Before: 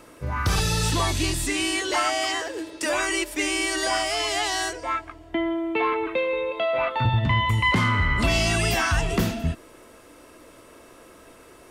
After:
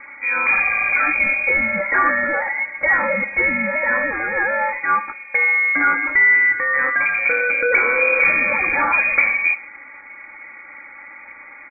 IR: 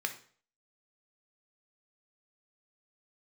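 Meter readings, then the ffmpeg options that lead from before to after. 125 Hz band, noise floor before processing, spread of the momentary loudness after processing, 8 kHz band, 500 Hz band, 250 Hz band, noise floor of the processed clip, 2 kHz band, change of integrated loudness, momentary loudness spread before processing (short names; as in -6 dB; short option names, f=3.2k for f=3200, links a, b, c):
under -15 dB, -49 dBFS, 6 LU, under -40 dB, +2.0 dB, -4.0 dB, -40 dBFS, +13.0 dB, +7.5 dB, 8 LU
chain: -filter_complex "[0:a]aeval=exprs='0.224*(cos(1*acos(clip(val(0)/0.224,-1,1)))-cos(1*PI/2))+0.0224*(cos(5*acos(clip(val(0)/0.224,-1,1)))-cos(5*PI/2))':c=same,highpass=48,lowpass=f=2.1k:t=q:w=0.5098,lowpass=f=2.1k:t=q:w=0.6013,lowpass=f=2.1k:t=q:w=0.9,lowpass=f=2.1k:t=q:w=2.563,afreqshift=-2500,lowshelf=f=170:g=6.5,aecho=1:1:3.6:0.79,asplit=2[a][b];[1:a]atrim=start_sample=2205[c];[b][c]afir=irnorm=-1:irlink=0,volume=-7dB[d];[a][d]amix=inputs=2:normalize=0"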